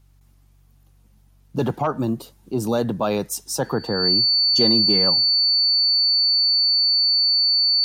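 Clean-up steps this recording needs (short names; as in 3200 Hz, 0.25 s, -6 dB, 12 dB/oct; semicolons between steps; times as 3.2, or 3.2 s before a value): de-hum 47.4 Hz, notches 3; notch 4500 Hz, Q 30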